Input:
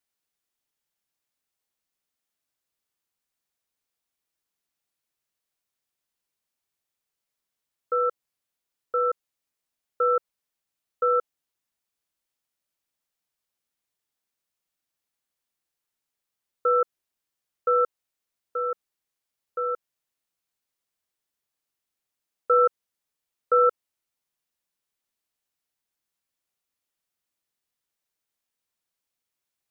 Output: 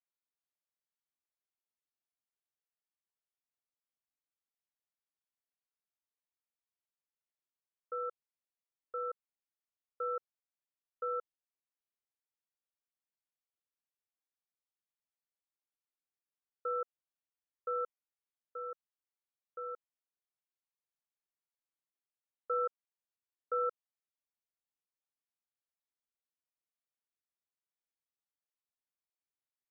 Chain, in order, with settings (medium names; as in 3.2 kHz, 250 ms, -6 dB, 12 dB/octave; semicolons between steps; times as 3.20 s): low-pass 1 kHz 6 dB/octave; bass shelf 450 Hz -11 dB; trim -8.5 dB